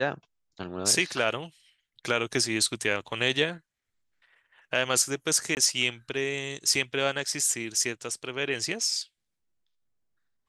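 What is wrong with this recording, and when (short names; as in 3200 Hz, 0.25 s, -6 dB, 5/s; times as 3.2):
5.55–5.57 gap 19 ms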